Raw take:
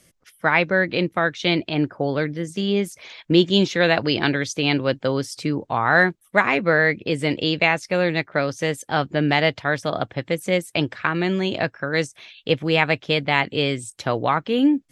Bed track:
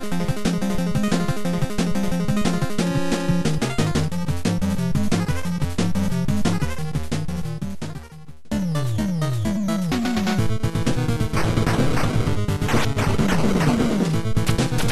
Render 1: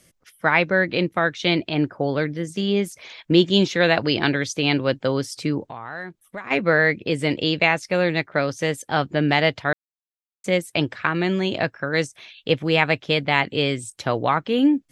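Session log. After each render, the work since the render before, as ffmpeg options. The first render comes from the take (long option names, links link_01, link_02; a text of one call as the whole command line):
ffmpeg -i in.wav -filter_complex "[0:a]asplit=3[link_01][link_02][link_03];[link_01]afade=type=out:start_time=5.69:duration=0.02[link_04];[link_02]acompressor=threshold=-35dB:ratio=3:attack=3.2:release=140:knee=1:detection=peak,afade=type=in:start_time=5.69:duration=0.02,afade=type=out:start_time=6.5:duration=0.02[link_05];[link_03]afade=type=in:start_time=6.5:duration=0.02[link_06];[link_04][link_05][link_06]amix=inputs=3:normalize=0,asplit=3[link_07][link_08][link_09];[link_07]atrim=end=9.73,asetpts=PTS-STARTPTS,afade=type=out:start_time=9.726:duration=0.004:curve=hsin[link_10];[link_08]atrim=start=9.73:end=10.44,asetpts=PTS-STARTPTS,volume=0[link_11];[link_09]atrim=start=10.44,asetpts=PTS-STARTPTS,afade=type=in:duration=0.004:curve=hsin[link_12];[link_10][link_11][link_12]concat=n=3:v=0:a=1" out.wav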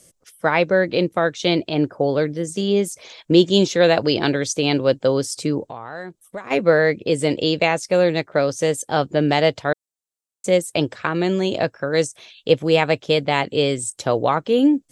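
ffmpeg -i in.wav -af "equalizer=frequency=500:width_type=o:width=1:gain=6,equalizer=frequency=2000:width_type=o:width=1:gain=-5,equalizer=frequency=8000:width_type=o:width=1:gain=10" out.wav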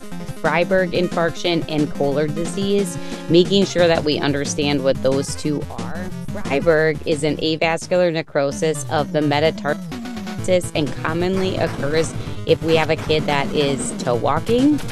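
ffmpeg -i in.wav -i bed.wav -filter_complex "[1:a]volume=-7dB[link_01];[0:a][link_01]amix=inputs=2:normalize=0" out.wav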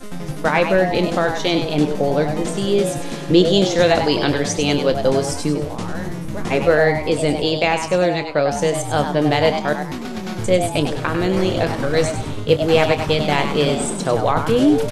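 ffmpeg -i in.wav -filter_complex "[0:a]asplit=2[link_01][link_02];[link_02]adelay=27,volume=-12dB[link_03];[link_01][link_03]amix=inputs=2:normalize=0,asplit=5[link_04][link_05][link_06][link_07][link_08];[link_05]adelay=98,afreqshift=150,volume=-8dB[link_09];[link_06]adelay=196,afreqshift=300,volume=-17.4dB[link_10];[link_07]adelay=294,afreqshift=450,volume=-26.7dB[link_11];[link_08]adelay=392,afreqshift=600,volume=-36.1dB[link_12];[link_04][link_09][link_10][link_11][link_12]amix=inputs=5:normalize=0" out.wav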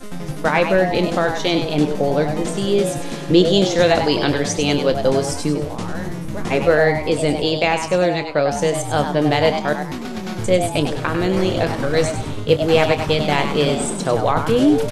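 ffmpeg -i in.wav -af anull out.wav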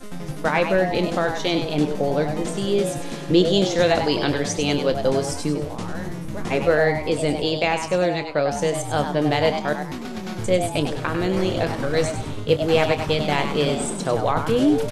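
ffmpeg -i in.wav -af "volume=-3.5dB" out.wav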